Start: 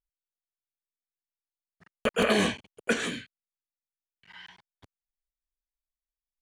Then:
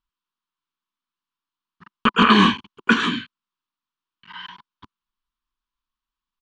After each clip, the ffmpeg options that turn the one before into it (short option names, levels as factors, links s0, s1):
-af "firequalizer=gain_entry='entry(110,0);entry(210,8);entry(350,4);entry(590,-18);entry(1000,15);entry(2000,-1);entry(3000,7);entry(10000,-21)':delay=0.05:min_phase=1,volume=1.78"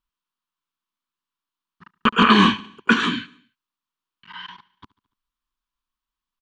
-af "aecho=1:1:72|144|216|288:0.0794|0.0453|0.0258|0.0147"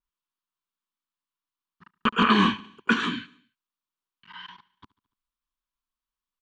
-af "adynamicequalizer=threshold=0.0355:dfrequency=2900:dqfactor=0.7:tfrequency=2900:tqfactor=0.7:attack=5:release=100:ratio=0.375:range=2.5:mode=cutabove:tftype=highshelf,volume=0.531"